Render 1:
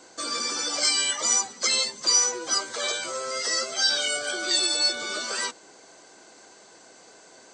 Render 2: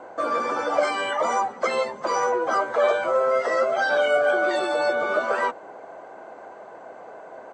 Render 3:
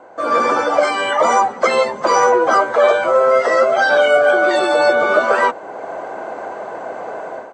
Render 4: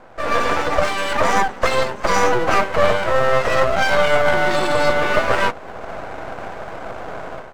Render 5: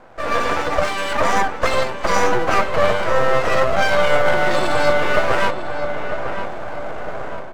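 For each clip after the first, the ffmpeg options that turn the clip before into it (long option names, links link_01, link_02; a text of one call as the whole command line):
ffmpeg -i in.wav -af "firequalizer=gain_entry='entry(330,0);entry(600,11);entry(1800,-2);entry(4600,-25)':delay=0.05:min_phase=1,volume=5.5dB" out.wav
ffmpeg -i in.wav -af "dynaudnorm=framelen=110:gausssize=5:maxgain=15dB,volume=-1dB" out.wav
ffmpeg -i in.wav -af "aeval=exprs='max(val(0),0)':channel_layout=same,volume=1dB" out.wav
ffmpeg -i in.wav -filter_complex "[0:a]asplit=2[link_01][link_02];[link_02]adelay=950,lowpass=frequency=2300:poles=1,volume=-8dB,asplit=2[link_03][link_04];[link_04]adelay=950,lowpass=frequency=2300:poles=1,volume=0.48,asplit=2[link_05][link_06];[link_06]adelay=950,lowpass=frequency=2300:poles=1,volume=0.48,asplit=2[link_07][link_08];[link_08]adelay=950,lowpass=frequency=2300:poles=1,volume=0.48,asplit=2[link_09][link_10];[link_10]adelay=950,lowpass=frequency=2300:poles=1,volume=0.48,asplit=2[link_11][link_12];[link_12]adelay=950,lowpass=frequency=2300:poles=1,volume=0.48[link_13];[link_01][link_03][link_05][link_07][link_09][link_11][link_13]amix=inputs=7:normalize=0,volume=-1dB" out.wav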